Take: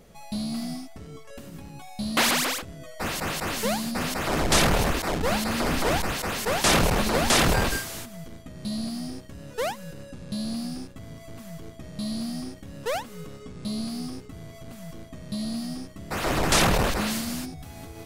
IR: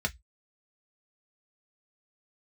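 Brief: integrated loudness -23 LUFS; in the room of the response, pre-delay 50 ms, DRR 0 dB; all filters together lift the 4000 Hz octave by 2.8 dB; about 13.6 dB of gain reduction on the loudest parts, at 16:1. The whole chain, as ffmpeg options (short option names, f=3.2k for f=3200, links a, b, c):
-filter_complex "[0:a]equalizer=f=4k:t=o:g=3.5,acompressor=threshold=-29dB:ratio=16,asplit=2[a][b];[1:a]atrim=start_sample=2205,adelay=50[c];[b][c]afir=irnorm=-1:irlink=0,volume=-6.5dB[d];[a][d]amix=inputs=2:normalize=0,volume=7.5dB"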